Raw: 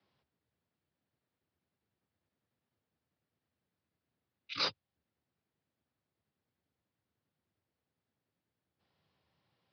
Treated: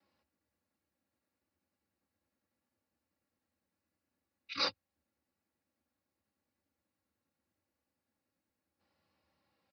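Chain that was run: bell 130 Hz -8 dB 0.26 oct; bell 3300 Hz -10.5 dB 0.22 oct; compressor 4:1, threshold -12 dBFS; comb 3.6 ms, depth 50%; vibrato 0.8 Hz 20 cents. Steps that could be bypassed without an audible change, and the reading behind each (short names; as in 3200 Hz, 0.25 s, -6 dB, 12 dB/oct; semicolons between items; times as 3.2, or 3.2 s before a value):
compressor, threshold -12 dBFS: input peak -19.5 dBFS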